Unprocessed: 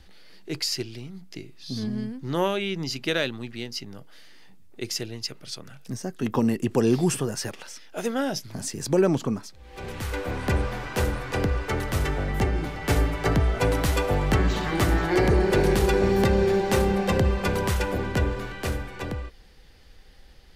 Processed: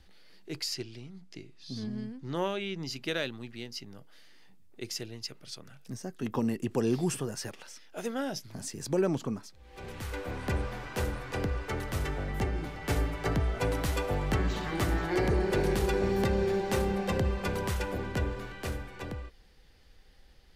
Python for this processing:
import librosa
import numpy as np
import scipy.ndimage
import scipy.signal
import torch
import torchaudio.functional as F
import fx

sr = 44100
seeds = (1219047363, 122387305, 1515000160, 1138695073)

y = fx.lowpass(x, sr, hz=8800.0, slope=12, at=(0.74, 2.84))
y = y * librosa.db_to_amplitude(-7.0)